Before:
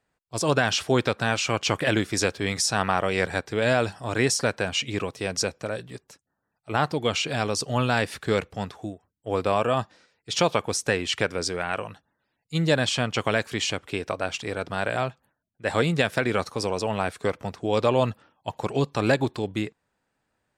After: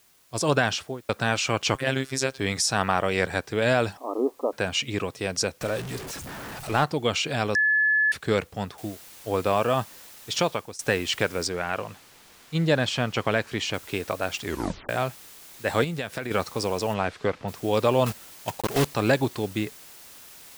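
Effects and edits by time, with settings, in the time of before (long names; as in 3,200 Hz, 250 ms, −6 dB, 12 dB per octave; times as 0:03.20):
0:00.62–0:01.09: fade out and dull
0:01.75–0:02.39: phases set to zero 133 Hz
0:03.97–0:04.53: linear-phase brick-wall band-pass 240–1,300 Hz
0:05.61–0:06.84: converter with a step at zero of −31 dBFS
0:07.55–0:08.12: beep over 1,720 Hz −18 dBFS
0:08.78: noise floor change −60 dB −47 dB
0:10.31–0:10.79: fade out, to −20 dB
0:11.47–0:13.74: low-pass filter 3,800 Hz 6 dB per octave
0:14.43: tape stop 0.46 s
0:15.84–0:16.31: downward compressor 2 to 1, threshold −33 dBFS
0:16.93–0:17.47: low-pass filter 5,800 Hz → 3,400 Hz
0:18.06–0:18.95: one scale factor per block 3 bits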